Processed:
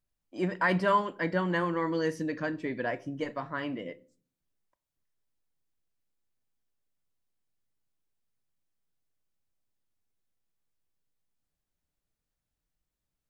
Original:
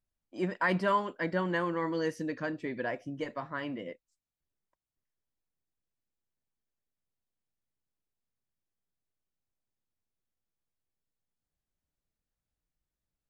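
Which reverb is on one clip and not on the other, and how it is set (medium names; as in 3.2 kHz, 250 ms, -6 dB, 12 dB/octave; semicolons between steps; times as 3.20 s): simulated room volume 370 m³, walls furnished, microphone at 0.35 m; trim +2 dB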